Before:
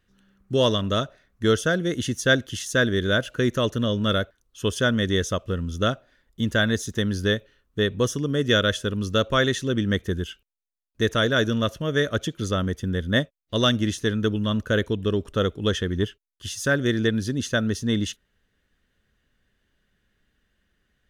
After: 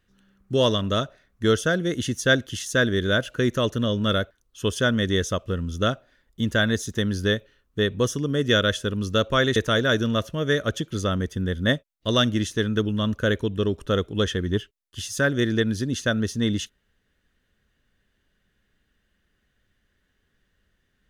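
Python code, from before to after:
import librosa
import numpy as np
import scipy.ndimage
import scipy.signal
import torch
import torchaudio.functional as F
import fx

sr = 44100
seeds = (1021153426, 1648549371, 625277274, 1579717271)

y = fx.edit(x, sr, fx.cut(start_s=9.56, length_s=1.47), tone=tone)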